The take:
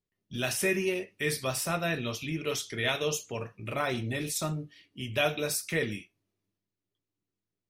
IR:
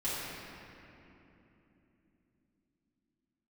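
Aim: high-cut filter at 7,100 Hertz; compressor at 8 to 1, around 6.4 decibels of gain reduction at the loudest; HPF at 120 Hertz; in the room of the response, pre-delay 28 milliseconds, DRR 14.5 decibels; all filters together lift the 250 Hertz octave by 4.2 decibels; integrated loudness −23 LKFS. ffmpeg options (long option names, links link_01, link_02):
-filter_complex "[0:a]highpass=120,lowpass=7100,equalizer=frequency=250:width_type=o:gain=6.5,acompressor=threshold=-28dB:ratio=8,asplit=2[link_01][link_02];[1:a]atrim=start_sample=2205,adelay=28[link_03];[link_02][link_03]afir=irnorm=-1:irlink=0,volume=-21dB[link_04];[link_01][link_04]amix=inputs=2:normalize=0,volume=11dB"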